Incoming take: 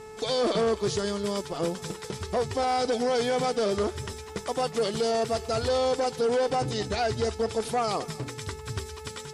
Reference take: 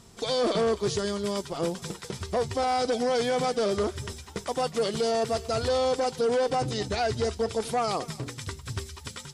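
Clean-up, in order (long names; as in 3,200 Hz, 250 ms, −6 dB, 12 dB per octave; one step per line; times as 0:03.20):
hum removal 433.8 Hz, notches 6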